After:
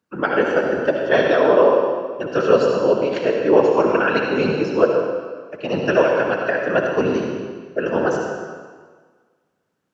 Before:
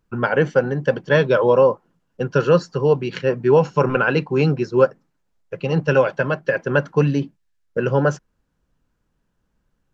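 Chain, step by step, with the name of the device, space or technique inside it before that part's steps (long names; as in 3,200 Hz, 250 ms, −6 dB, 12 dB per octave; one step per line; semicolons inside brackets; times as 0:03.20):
whispering ghost (random phases in short frames; high-pass filter 240 Hz 12 dB per octave; convolution reverb RT60 1.6 s, pre-delay 57 ms, DRR 0.5 dB)
level −1 dB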